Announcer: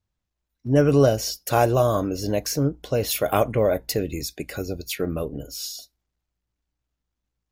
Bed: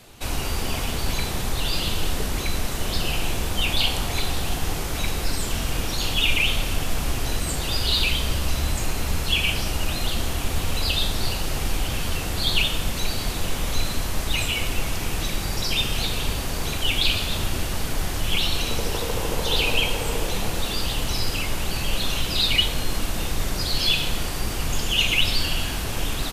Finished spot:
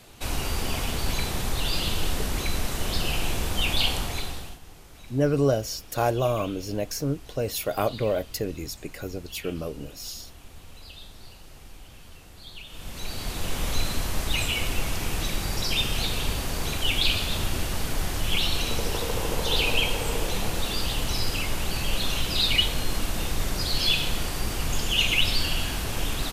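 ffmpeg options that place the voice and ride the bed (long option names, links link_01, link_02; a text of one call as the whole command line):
ffmpeg -i stem1.wav -i stem2.wav -filter_complex "[0:a]adelay=4450,volume=-5dB[link_01];[1:a]volume=17.5dB,afade=type=out:start_time=3.9:duration=0.69:silence=0.105925,afade=type=in:start_time=12.66:duration=0.98:silence=0.105925[link_02];[link_01][link_02]amix=inputs=2:normalize=0" out.wav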